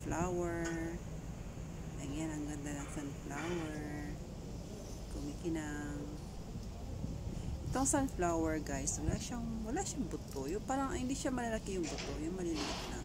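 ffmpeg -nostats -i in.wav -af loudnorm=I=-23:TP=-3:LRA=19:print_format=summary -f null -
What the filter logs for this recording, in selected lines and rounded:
Input Integrated:    -39.6 LUFS
Input True Peak:     -20.7 dBTP
Input LRA:             4.7 LU
Input Threshold:     -49.6 LUFS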